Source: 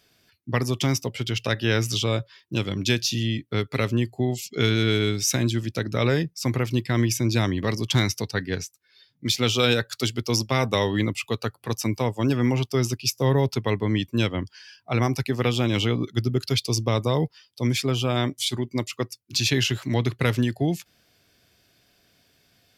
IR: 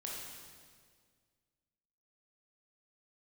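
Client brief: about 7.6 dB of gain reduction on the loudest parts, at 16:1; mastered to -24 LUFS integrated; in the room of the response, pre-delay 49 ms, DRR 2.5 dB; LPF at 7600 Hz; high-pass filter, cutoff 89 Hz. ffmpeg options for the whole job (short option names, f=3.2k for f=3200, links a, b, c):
-filter_complex "[0:a]highpass=89,lowpass=7.6k,acompressor=threshold=-24dB:ratio=16,asplit=2[a][b];[1:a]atrim=start_sample=2205,adelay=49[c];[b][c]afir=irnorm=-1:irlink=0,volume=-2.5dB[d];[a][d]amix=inputs=2:normalize=0,volume=4.5dB"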